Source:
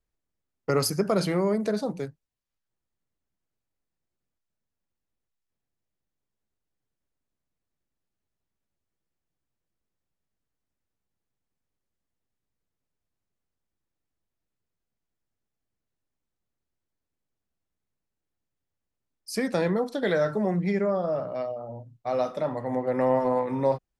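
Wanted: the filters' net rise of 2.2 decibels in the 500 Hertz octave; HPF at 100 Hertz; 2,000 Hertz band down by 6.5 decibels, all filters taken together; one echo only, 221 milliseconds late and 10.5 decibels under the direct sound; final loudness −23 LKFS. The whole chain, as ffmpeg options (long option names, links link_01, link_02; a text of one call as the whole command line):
ffmpeg -i in.wav -af "highpass=100,equalizer=frequency=500:width_type=o:gain=3,equalizer=frequency=2000:width_type=o:gain=-8.5,aecho=1:1:221:0.299,volume=2.5dB" out.wav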